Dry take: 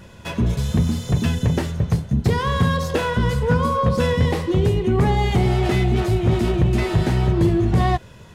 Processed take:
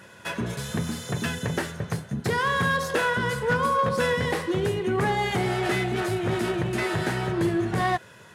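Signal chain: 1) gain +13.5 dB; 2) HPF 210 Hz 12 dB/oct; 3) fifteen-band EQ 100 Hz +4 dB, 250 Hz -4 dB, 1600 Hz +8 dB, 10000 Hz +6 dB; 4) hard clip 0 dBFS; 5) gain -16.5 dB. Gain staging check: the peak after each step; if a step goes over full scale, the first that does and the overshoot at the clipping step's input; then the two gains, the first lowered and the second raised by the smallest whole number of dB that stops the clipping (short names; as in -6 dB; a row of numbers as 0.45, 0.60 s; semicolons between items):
+4.5, +4.0, +6.0, 0.0, -16.5 dBFS; step 1, 6.0 dB; step 1 +7.5 dB, step 5 -10.5 dB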